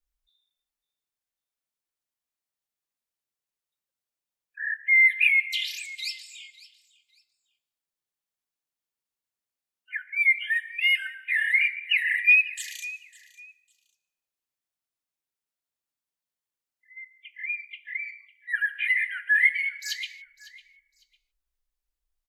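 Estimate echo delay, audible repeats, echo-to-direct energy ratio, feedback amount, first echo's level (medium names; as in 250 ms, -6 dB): 552 ms, 2, -19.0 dB, 25%, -19.0 dB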